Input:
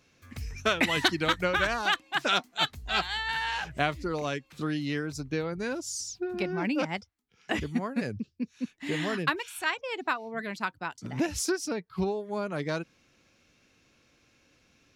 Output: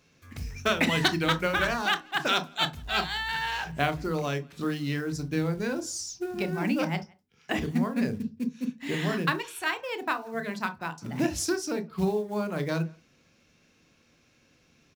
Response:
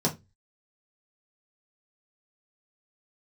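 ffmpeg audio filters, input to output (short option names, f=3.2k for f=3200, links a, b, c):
-filter_complex "[0:a]acrusher=bits=6:mode=log:mix=0:aa=0.000001,asplit=2[a][b];[b]adelay=170,highpass=300,lowpass=3.4k,asoftclip=type=hard:threshold=-20dB,volume=-27dB[c];[a][c]amix=inputs=2:normalize=0,asplit=2[d][e];[1:a]atrim=start_sample=2205,adelay=26[f];[e][f]afir=irnorm=-1:irlink=0,volume=-19dB[g];[d][g]amix=inputs=2:normalize=0"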